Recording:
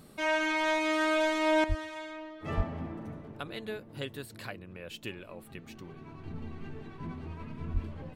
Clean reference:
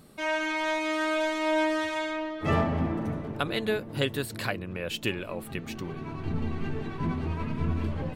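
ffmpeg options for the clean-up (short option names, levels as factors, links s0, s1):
-filter_complex "[0:a]asplit=3[s0][s1][s2];[s0]afade=t=out:st=1.68:d=0.02[s3];[s1]highpass=f=140:w=0.5412,highpass=f=140:w=1.3066,afade=t=in:st=1.68:d=0.02,afade=t=out:st=1.8:d=0.02[s4];[s2]afade=t=in:st=1.8:d=0.02[s5];[s3][s4][s5]amix=inputs=3:normalize=0,asplit=3[s6][s7][s8];[s6]afade=t=out:st=2.56:d=0.02[s9];[s7]highpass=f=140:w=0.5412,highpass=f=140:w=1.3066,afade=t=in:st=2.56:d=0.02,afade=t=out:st=2.68:d=0.02[s10];[s8]afade=t=in:st=2.68:d=0.02[s11];[s9][s10][s11]amix=inputs=3:normalize=0,asplit=3[s12][s13][s14];[s12]afade=t=out:st=7.73:d=0.02[s15];[s13]highpass=f=140:w=0.5412,highpass=f=140:w=1.3066,afade=t=in:st=7.73:d=0.02,afade=t=out:st=7.85:d=0.02[s16];[s14]afade=t=in:st=7.85:d=0.02[s17];[s15][s16][s17]amix=inputs=3:normalize=0,asetnsamples=n=441:p=0,asendcmd='1.64 volume volume 10.5dB',volume=1"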